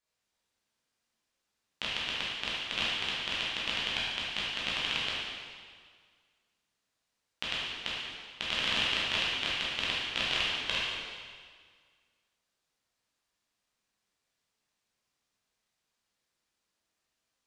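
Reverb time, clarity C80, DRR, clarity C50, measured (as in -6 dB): 1.8 s, 0.0 dB, -7.5 dB, -2.5 dB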